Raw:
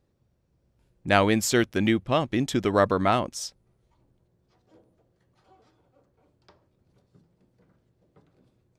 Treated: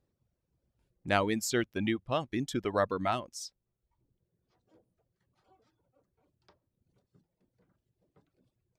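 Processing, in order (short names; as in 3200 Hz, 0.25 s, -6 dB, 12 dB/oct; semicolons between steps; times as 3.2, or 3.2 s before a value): reverb removal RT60 1.1 s; gain -7 dB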